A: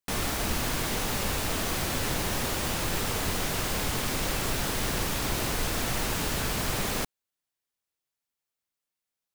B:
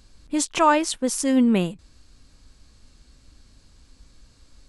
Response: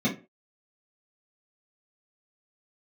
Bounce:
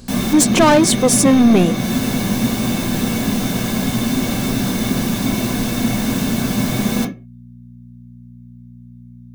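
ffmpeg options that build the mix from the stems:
-filter_complex "[0:a]aeval=exprs='val(0)+0.00316*(sin(2*PI*60*n/s)+sin(2*PI*2*60*n/s)/2+sin(2*PI*3*60*n/s)/3+sin(2*PI*4*60*n/s)/4+sin(2*PI*5*60*n/s)/5)':c=same,volume=1dB,asplit=2[a][b];[b]volume=-7dB[c];[1:a]aeval=exprs='0.473*(cos(1*acos(clip(val(0)/0.473,-1,1)))-cos(1*PI/2))+0.119*(cos(5*acos(clip(val(0)/0.473,-1,1)))-cos(5*PI/2))+0.075*(cos(6*acos(clip(val(0)/0.473,-1,1)))-cos(6*PI/2))':c=same,equalizer=f=440:w=0.63:g=10,acontrast=84,volume=-6dB,asplit=2[d][e];[e]apad=whole_len=412185[f];[a][f]sidechaincompress=threshold=-24dB:ratio=8:attack=16:release=281[g];[2:a]atrim=start_sample=2205[h];[c][h]afir=irnorm=-1:irlink=0[i];[g][d][i]amix=inputs=3:normalize=0,highshelf=f=6.3k:g=7.5"

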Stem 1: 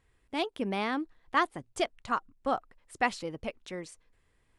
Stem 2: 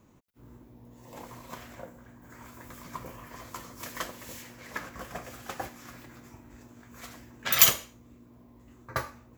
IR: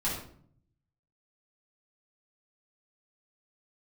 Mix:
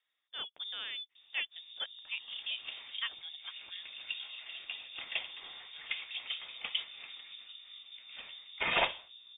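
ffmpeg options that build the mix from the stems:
-filter_complex "[0:a]volume=-10dB[a];[1:a]equalizer=f=2.2k:t=o:w=0.31:g=-9,acrossover=split=1200[b][c];[b]aeval=exprs='val(0)*(1-0.5/2+0.5/2*cos(2*PI*5*n/s))':c=same[d];[c]aeval=exprs='val(0)*(1-0.5/2-0.5/2*cos(2*PI*5*n/s))':c=same[e];[d][e]amix=inputs=2:normalize=0,adelay=1150,volume=3dB[f];[a][f]amix=inputs=2:normalize=0,highpass=f=110:w=0.5412,highpass=f=110:w=1.3066,lowpass=f=3.2k:t=q:w=0.5098,lowpass=f=3.2k:t=q:w=0.6013,lowpass=f=3.2k:t=q:w=0.9,lowpass=f=3.2k:t=q:w=2.563,afreqshift=-3800"

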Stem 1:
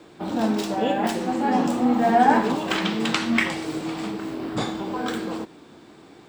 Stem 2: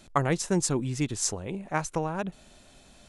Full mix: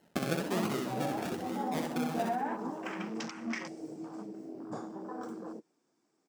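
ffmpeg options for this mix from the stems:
-filter_complex "[0:a]afwtdn=0.0316,highshelf=f=4.6k:t=q:w=3:g=6.5,alimiter=limit=-13dB:level=0:latency=1:release=162,adelay=150,volume=-8dB[a];[1:a]acrusher=samples=36:mix=1:aa=0.000001:lfo=1:lforange=21.6:lforate=1.1,volume=-3.5dB,asplit=2[b][c];[c]volume=-3.5dB,aecho=0:1:63|126|189|252|315|378:1|0.4|0.16|0.064|0.0256|0.0102[d];[a][b][d]amix=inputs=3:normalize=0,highpass=180,flanger=delay=0.8:depth=4.7:regen=-58:speed=1.5:shape=sinusoidal"

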